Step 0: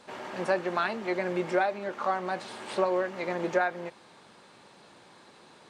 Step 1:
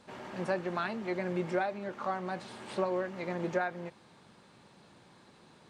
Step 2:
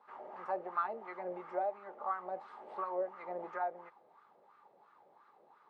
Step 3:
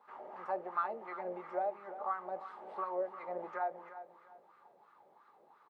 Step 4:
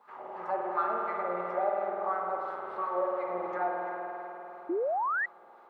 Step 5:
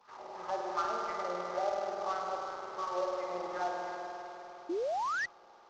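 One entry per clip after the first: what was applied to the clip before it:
tone controls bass +10 dB, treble 0 dB; trim -6 dB
wah-wah 2.9 Hz 580–1300 Hz, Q 4; small resonant body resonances 420/830/1200/2000 Hz, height 7 dB, ringing for 25 ms; trim +1 dB
feedback delay 348 ms, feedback 30%, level -13 dB
spring tank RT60 3.7 s, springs 50 ms, chirp 60 ms, DRR -2 dB; painted sound rise, 4.69–5.26 s, 320–2000 Hz -33 dBFS; trim +3.5 dB
CVSD coder 32 kbps; trim -3.5 dB

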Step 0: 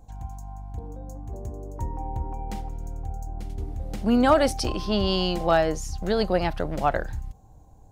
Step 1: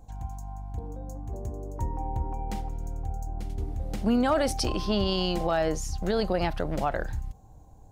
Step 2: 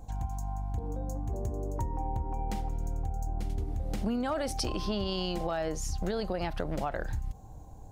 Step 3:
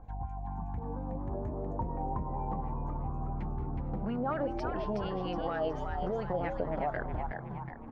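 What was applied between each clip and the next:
peak limiter -16.5 dBFS, peak gain reduction 7 dB
compression 6:1, threshold -33 dBFS, peak gain reduction 12 dB; trim +4 dB
LFO low-pass sine 4.2 Hz 610–2200 Hz; frequency-shifting echo 368 ms, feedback 46%, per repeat +98 Hz, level -5.5 dB; trim -4.5 dB

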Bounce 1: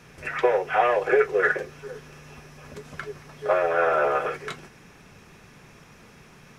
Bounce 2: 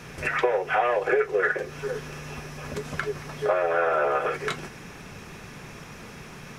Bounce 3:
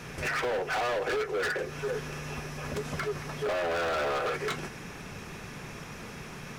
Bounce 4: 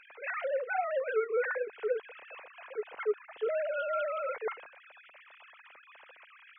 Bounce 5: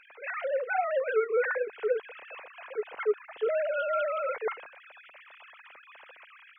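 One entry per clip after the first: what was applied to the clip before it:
compression 2.5:1, threshold -33 dBFS, peak gain reduction 12 dB; trim +8 dB
hard clipper -27.5 dBFS, distortion -6 dB
formants replaced by sine waves; trim -2.5 dB
level rider gain up to 3.5 dB

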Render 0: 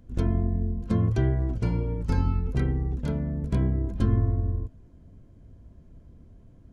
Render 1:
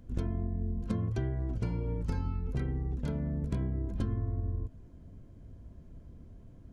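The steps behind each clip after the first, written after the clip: compression, threshold -29 dBFS, peak gain reduction 11.5 dB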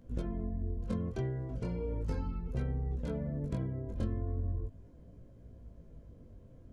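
peaking EQ 520 Hz +8.5 dB 0.46 oct; chorus 0.37 Hz, delay 16.5 ms, depth 7 ms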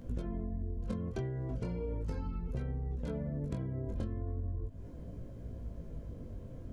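compression 6:1, threshold -43 dBFS, peak gain reduction 13.5 dB; trim +9 dB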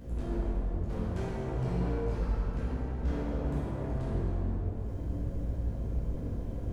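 hard clipper -40 dBFS, distortion -7 dB; plate-style reverb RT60 2.4 s, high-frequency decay 0.8×, DRR -8.5 dB

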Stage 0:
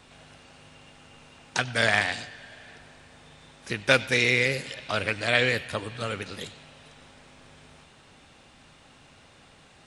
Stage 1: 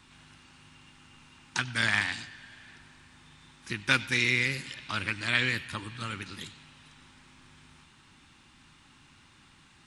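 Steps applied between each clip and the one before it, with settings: high-order bell 560 Hz -13.5 dB 1 oct; trim -3 dB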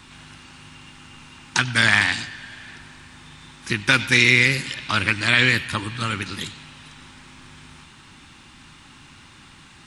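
loudness maximiser +12 dB; trim -1 dB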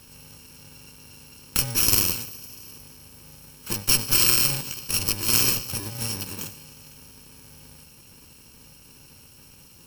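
bit-reversed sample order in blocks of 64 samples; Chebyshev shaper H 4 -9 dB, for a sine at -1.5 dBFS; trim -2.5 dB

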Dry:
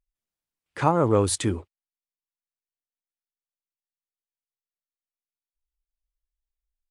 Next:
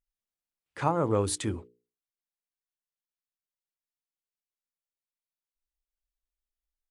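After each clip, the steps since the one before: hum notches 60/120/180/240/300/360/420/480 Hz; trim -5.5 dB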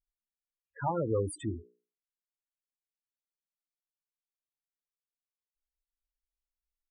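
dynamic bell 1.8 kHz, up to +6 dB, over -42 dBFS, Q 1.1; loudest bins only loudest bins 8; trim -2.5 dB

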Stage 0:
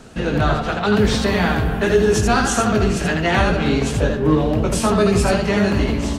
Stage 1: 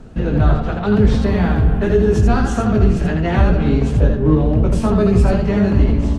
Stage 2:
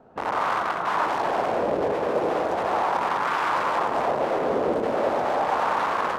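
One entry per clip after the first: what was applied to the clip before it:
tilt EQ -3 dB/octave; trim -4 dB
integer overflow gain 14 dB; echo whose repeats swap between lows and highs 100 ms, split 1.5 kHz, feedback 67%, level -2 dB; wah-wah 0.37 Hz 500–1100 Hz, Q 2.1

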